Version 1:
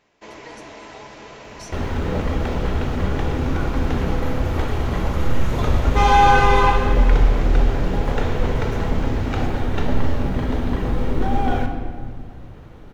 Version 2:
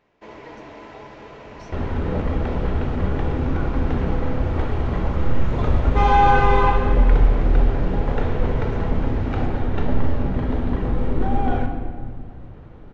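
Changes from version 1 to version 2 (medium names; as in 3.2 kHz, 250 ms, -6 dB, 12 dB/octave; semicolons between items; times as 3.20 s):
speech: add low-pass 7 kHz; first sound: send +9.0 dB; master: add tape spacing loss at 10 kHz 22 dB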